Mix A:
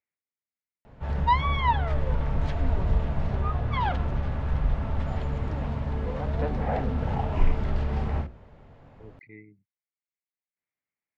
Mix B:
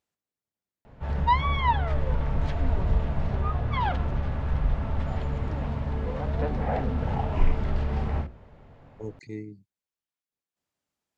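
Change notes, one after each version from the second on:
speech: remove four-pole ladder low-pass 2.3 kHz, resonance 75%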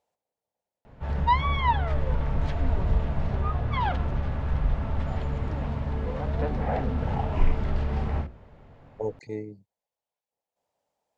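speech: add high-order bell 660 Hz +13.5 dB 1.3 oct

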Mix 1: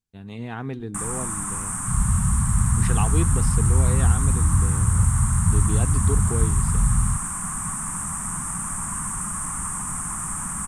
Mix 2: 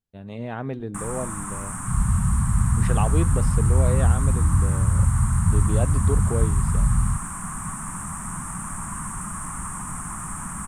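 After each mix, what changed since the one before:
speech: add peaking EQ 580 Hz +13.5 dB 0.33 oct; master: add peaking EQ 7.8 kHz -6.5 dB 2.1 oct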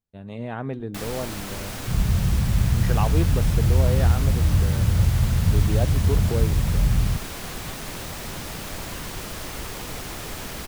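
first sound: remove FFT filter 110 Hz 0 dB, 190 Hz +8 dB, 490 Hz -22 dB, 1.1 kHz +10 dB, 4.5 kHz -29 dB, 8.7 kHz +14 dB, 15 kHz -24 dB

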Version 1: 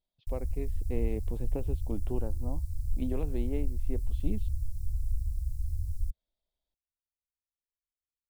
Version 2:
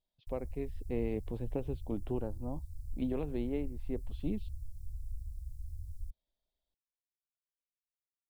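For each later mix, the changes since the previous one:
background -10.5 dB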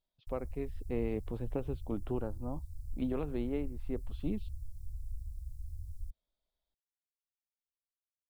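master: add peaking EQ 1.3 kHz +8.5 dB 0.53 oct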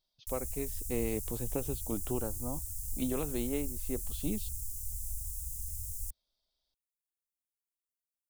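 master: remove distance through air 420 m

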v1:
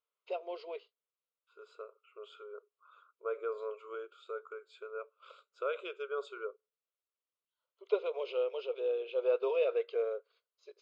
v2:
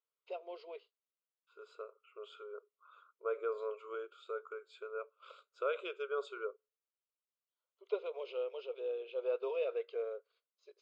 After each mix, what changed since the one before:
first voice -5.5 dB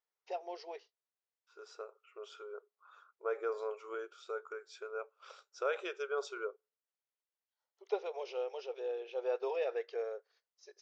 master: remove static phaser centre 1.2 kHz, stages 8

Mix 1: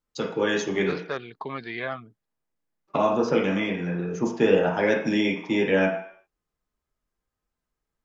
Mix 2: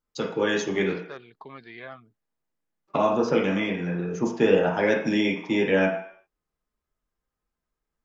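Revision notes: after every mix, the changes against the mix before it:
second voice -9.5 dB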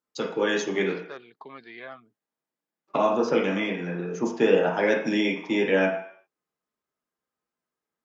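master: add high-pass 200 Hz 12 dB/octave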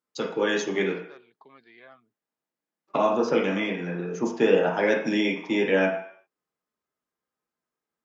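second voice -9.5 dB

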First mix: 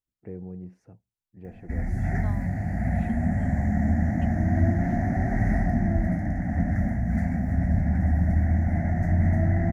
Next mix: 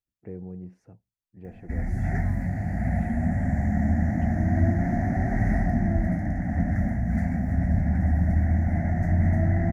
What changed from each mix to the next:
second voice -8.0 dB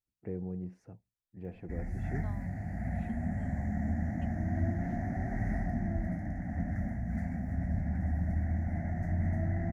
background -9.5 dB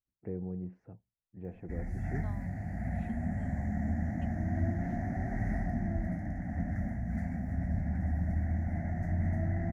first voice: add Bessel low-pass 1.8 kHz, order 2

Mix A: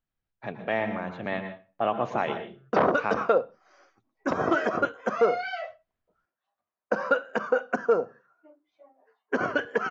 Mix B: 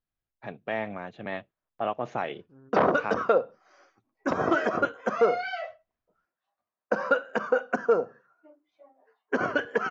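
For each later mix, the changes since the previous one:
second voice: remove Chebyshev band-stop 200–1200 Hz, order 5; reverb: off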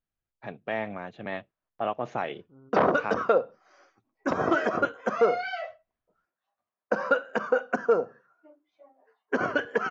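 second voice: add brick-wall FIR low-pass 1.5 kHz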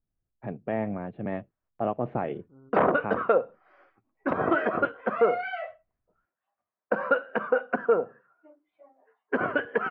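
first voice: add tilt shelf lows +9 dB, about 730 Hz; master: add low-pass 2.8 kHz 24 dB/octave

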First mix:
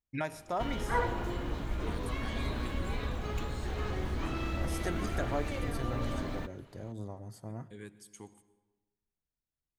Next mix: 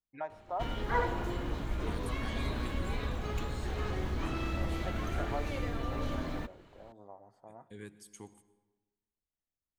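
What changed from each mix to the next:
first voice: add band-pass filter 800 Hz, Q 1.9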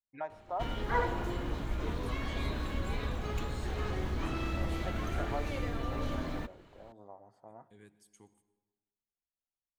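second voice -10.0 dB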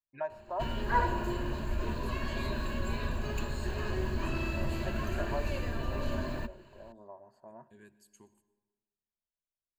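master: add rippled EQ curve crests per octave 1.4, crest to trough 11 dB

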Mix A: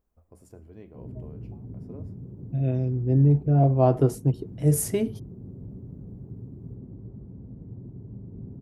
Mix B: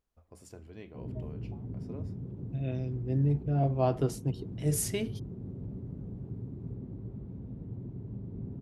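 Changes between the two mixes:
first voice: send -10.5 dB; second voice -9.0 dB; master: add peaking EQ 3.7 kHz +12.5 dB 2.5 oct

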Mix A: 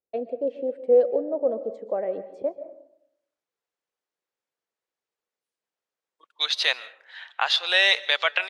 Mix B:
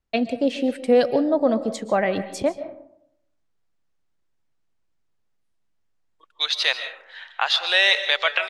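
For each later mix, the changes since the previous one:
first voice: remove band-pass filter 490 Hz, Q 3.7; second voice: send +11.5 dB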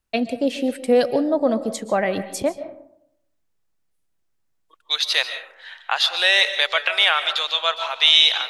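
second voice: entry -1.50 s; master: remove distance through air 59 m

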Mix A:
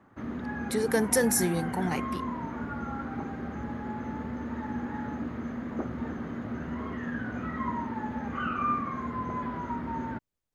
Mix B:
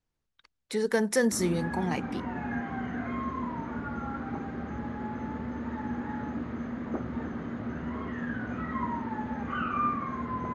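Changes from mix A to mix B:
background: entry +1.15 s; master: add low-pass 6.9 kHz 12 dB/octave

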